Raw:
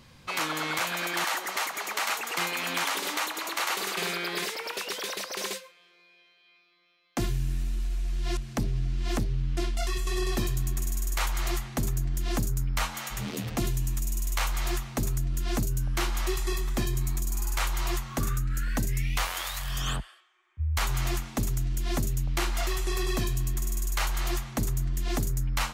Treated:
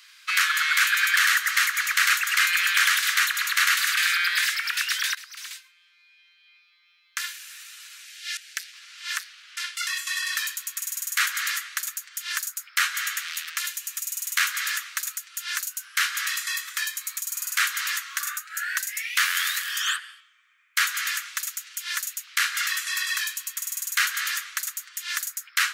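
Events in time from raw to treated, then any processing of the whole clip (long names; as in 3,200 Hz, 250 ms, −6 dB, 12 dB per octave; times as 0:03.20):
0:05.15–0:07.42: fade in, from −16 dB
0:08.05–0:08.73: inverse Chebyshev high-pass filter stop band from 790 Hz
whole clip: Butterworth high-pass 1,300 Hz 48 dB per octave; dynamic equaliser 1,700 Hz, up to +7 dB, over −51 dBFS, Q 3.5; level +8 dB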